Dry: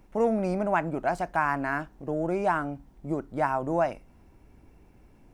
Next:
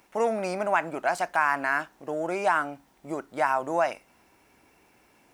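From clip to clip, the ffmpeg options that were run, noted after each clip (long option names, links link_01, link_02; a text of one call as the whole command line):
ffmpeg -i in.wav -filter_complex "[0:a]highpass=frequency=1500:poles=1,asplit=2[link_01][link_02];[link_02]alimiter=limit=-24dB:level=0:latency=1,volume=3dB[link_03];[link_01][link_03]amix=inputs=2:normalize=0,volume=2dB" out.wav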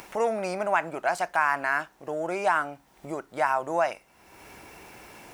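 ffmpeg -i in.wav -af "equalizer=frequency=260:width_type=o:width=0.49:gain=-5.5,acompressor=mode=upward:threshold=-34dB:ratio=2.5" out.wav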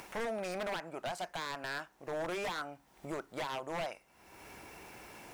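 ffmpeg -i in.wav -af "alimiter=limit=-19.5dB:level=0:latency=1:release=446,aeval=exprs='0.0447*(abs(mod(val(0)/0.0447+3,4)-2)-1)':channel_layout=same,volume=-4dB" out.wav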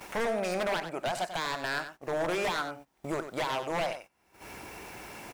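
ffmpeg -i in.wav -af "aecho=1:1:93:0.316,agate=range=-16dB:threshold=-53dB:ratio=16:detection=peak,volume=6.5dB" out.wav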